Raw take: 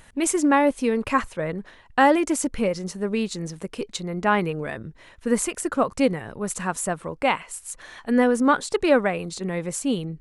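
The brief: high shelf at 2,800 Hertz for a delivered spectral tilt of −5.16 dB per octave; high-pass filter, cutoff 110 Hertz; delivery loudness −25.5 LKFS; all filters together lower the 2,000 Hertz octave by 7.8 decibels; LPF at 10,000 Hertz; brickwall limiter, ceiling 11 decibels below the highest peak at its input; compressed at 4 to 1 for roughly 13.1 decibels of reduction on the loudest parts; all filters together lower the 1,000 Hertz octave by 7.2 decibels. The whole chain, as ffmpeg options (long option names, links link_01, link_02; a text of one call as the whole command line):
ffmpeg -i in.wav -af "highpass=110,lowpass=10000,equalizer=frequency=1000:width_type=o:gain=-7.5,equalizer=frequency=2000:width_type=o:gain=-5,highshelf=frequency=2800:gain=-6,acompressor=threshold=-32dB:ratio=4,volume=13.5dB,alimiter=limit=-16.5dB:level=0:latency=1" out.wav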